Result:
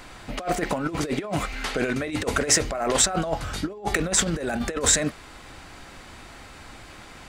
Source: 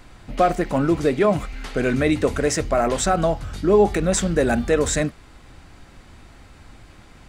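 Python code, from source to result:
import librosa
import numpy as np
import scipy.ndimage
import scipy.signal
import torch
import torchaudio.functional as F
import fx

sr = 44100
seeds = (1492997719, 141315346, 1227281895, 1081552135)

y = fx.over_compress(x, sr, threshold_db=-23.0, ratio=-0.5)
y = fx.low_shelf(y, sr, hz=280.0, db=-10.5)
y = y * librosa.db_to_amplitude(3.0)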